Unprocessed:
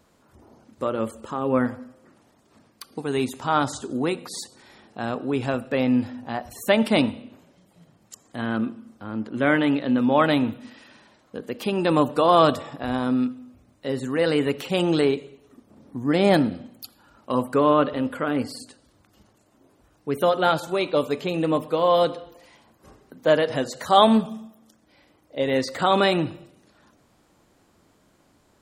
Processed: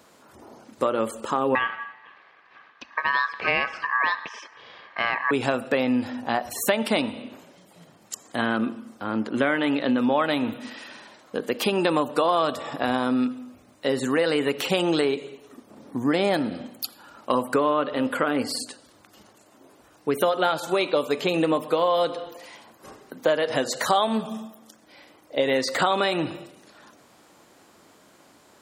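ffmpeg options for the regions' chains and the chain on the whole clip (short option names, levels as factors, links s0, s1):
-filter_complex "[0:a]asettb=1/sr,asplit=3[s0][s1][s2];[s0]atrim=end=1.554[s3];[s1]atrim=start=1.55:end=5.31,asetpts=PTS-STARTPTS,afade=t=in:d=0.004:c=qsin,afade=t=out:st=3.756:d=0.004:c=qsin,lowpass=f=3000:w=0.5412,lowpass=f=3000:w=1.3066,aeval=exprs='val(0)*sin(2*PI*1400*n/s)':c=same[s4];[s2]atrim=start=5.306[s5];[s3][s4]acrossfade=d=0.004:c1=hsin:c2=qsin[s6];[s6][s5]acrossfade=d=0.004:c1=qsin:c2=hsin,highpass=f=390:p=1,acompressor=threshold=0.0398:ratio=6,volume=2.82"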